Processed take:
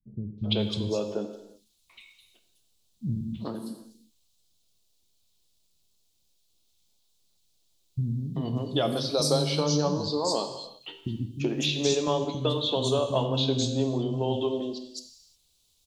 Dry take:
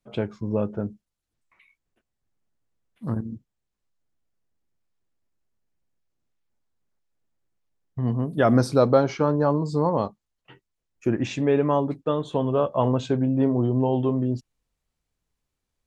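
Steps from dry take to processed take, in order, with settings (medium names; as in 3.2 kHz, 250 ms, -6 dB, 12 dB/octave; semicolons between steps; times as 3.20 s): resonant high shelf 2.6 kHz +13.5 dB, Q 3; compression, threshold -26 dBFS, peak gain reduction 13 dB; three bands offset in time lows, mids, highs 380/590 ms, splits 240/4300 Hz; gated-style reverb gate 380 ms falling, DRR 6 dB; trim +4 dB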